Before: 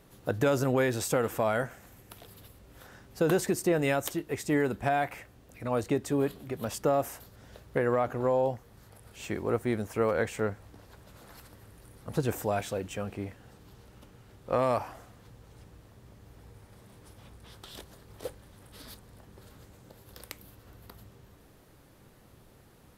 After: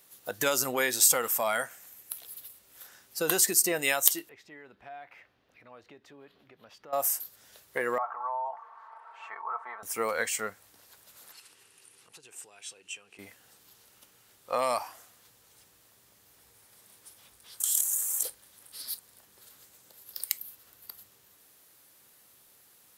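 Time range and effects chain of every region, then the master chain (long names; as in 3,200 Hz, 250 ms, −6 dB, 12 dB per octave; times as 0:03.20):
0:04.29–0:06.93: downward compressor 2 to 1, threshold −46 dBFS + high-frequency loss of the air 290 metres
0:07.98–0:09.83: flat-topped band-pass 1,000 Hz, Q 1.8 + comb filter 4.5 ms, depth 68% + envelope flattener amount 50%
0:11.32–0:13.19: downward compressor 3 to 1, threshold −49 dBFS + loudspeaker in its box 120–10,000 Hz, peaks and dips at 230 Hz −6 dB, 410 Hz +5 dB, 600 Hz −7 dB, 2,700 Hz +9 dB
0:17.60–0:18.23: high-pass filter 670 Hz + high shelf with overshoot 5,800 Hz +8.5 dB, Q 3 + envelope flattener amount 70%
whole clip: noise reduction from a noise print of the clip's start 7 dB; spectral tilt +4.5 dB per octave; level +1 dB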